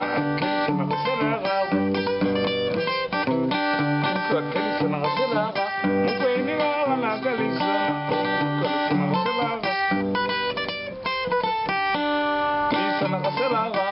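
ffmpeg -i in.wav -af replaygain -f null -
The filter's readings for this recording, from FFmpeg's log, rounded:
track_gain = +6.3 dB
track_peak = 0.177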